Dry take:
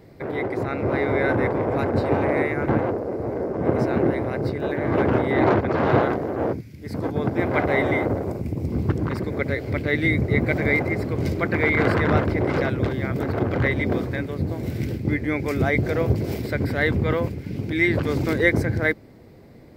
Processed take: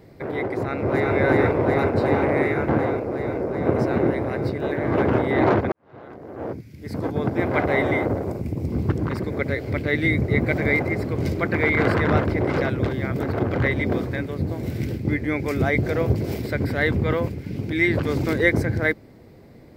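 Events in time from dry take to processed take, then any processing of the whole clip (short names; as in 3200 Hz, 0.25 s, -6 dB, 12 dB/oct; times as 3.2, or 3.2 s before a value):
0.57–1.14 echo throw 0.37 s, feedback 80%, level 0 dB
5.72–6.8 fade in quadratic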